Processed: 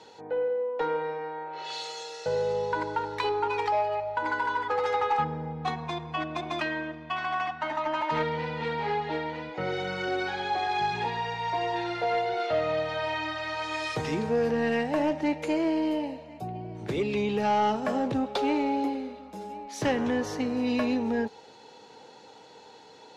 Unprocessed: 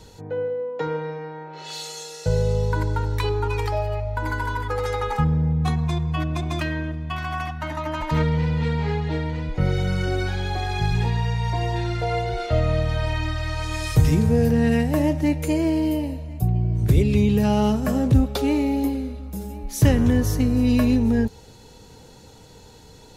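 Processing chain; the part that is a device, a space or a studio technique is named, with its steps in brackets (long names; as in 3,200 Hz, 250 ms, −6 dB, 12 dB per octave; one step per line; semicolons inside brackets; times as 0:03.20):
intercom (band-pass filter 370–4,200 Hz; parametric band 840 Hz +6 dB 0.25 octaves; soft clipping −17.5 dBFS, distortion −19 dB)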